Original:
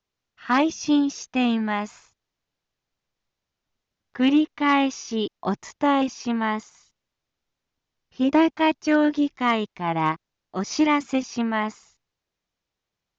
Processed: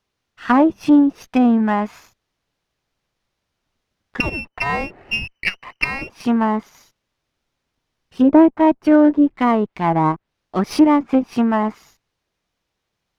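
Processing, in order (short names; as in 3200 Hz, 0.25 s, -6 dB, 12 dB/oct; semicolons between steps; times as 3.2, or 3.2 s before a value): 4.2–6.1 inverted band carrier 3000 Hz; treble ducked by the level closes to 910 Hz, closed at -19.5 dBFS; running maximum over 3 samples; gain +8 dB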